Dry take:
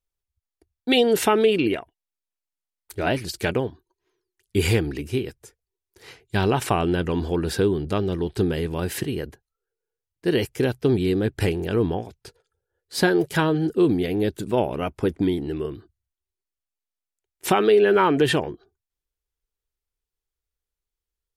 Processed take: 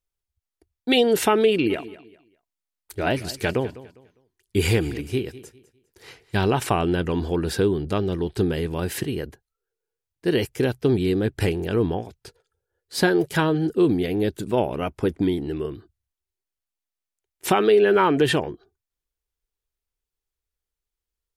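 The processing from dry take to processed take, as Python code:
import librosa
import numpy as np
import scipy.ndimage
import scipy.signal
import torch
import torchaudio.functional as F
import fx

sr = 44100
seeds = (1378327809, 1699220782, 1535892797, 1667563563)

y = fx.echo_feedback(x, sr, ms=202, feedback_pct=28, wet_db=-17.5, at=(1.69, 6.44), fade=0.02)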